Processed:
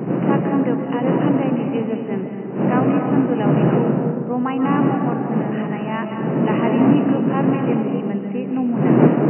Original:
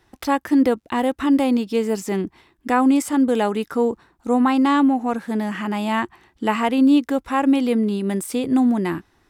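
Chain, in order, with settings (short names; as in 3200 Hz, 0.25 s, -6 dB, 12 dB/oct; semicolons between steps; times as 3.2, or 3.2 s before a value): wind noise 270 Hz -15 dBFS; FFT band-pass 120–3000 Hz; digital reverb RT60 2 s, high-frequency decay 0.35×, pre-delay 0.11 s, DRR 3.5 dB; gain -4.5 dB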